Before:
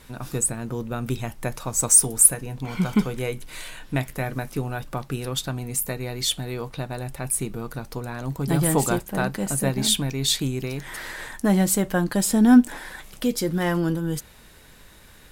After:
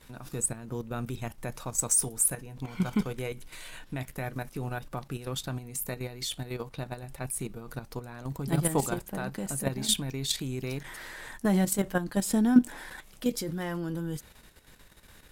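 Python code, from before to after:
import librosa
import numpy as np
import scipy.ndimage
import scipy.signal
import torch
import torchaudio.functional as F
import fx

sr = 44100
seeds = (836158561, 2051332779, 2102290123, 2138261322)

y = fx.level_steps(x, sr, step_db=10)
y = y * 10.0 ** (-3.0 / 20.0)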